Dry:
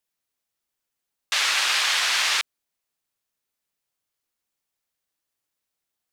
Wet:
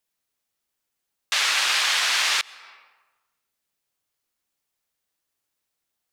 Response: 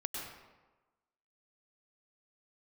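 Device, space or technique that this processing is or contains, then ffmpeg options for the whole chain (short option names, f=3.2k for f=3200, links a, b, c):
ducked reverb: -filter_complex "[0:a]asplit=3[a][b][c];[1:a]atrim=start_sample=2205[d];[b][d]afir=irnorm=-1:irlink=0[e];[c]apad=whole_len=270260[f];[e][f]sidechaincompress=threshold=-35dB:ratio=8:attack=11:release=257,volume=-9.5dB[g];[a][g]amix=inputs=2:normalize=0"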